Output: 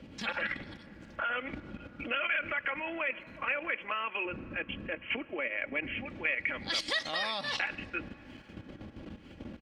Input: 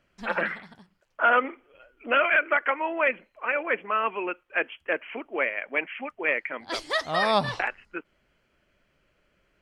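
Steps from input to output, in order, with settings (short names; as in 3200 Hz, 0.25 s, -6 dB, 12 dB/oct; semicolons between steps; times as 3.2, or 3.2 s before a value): wind noise 160 Hz -37 dBFS; comb 3.6 ms, depth 49%; level quantiser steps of 13 dB; 4.25–6.06 tilt shelf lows +6 dB, about 690 Hz; limiter -26 dBFS, peak gain reduction 11 dB; compressor 4:1, threshold -44 dBFS, peak gain reduction 12.5 dB; weighting filter D; on a send: reverb RT60 5.4 s, pre-delay 98 ms, DRR 19 dB; on the sum: gain +8 dB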